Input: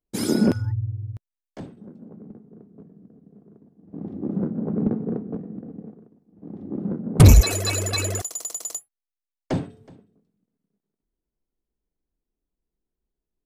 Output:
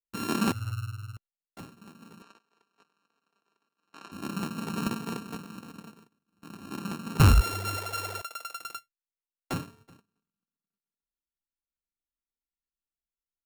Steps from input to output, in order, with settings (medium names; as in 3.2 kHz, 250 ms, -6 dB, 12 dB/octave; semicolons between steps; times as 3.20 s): sorted samples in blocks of 32 samples; 2.22–4.12 s: three-band isolator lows -23 dB, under 400 Hz, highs -16 dB, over 7.5 kHz; gate -48 dBFS, range -12 dB; 7.77–8.59 s: resonant low shelf 370 Hz -7.5 dB, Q 1.5; trim -8 dB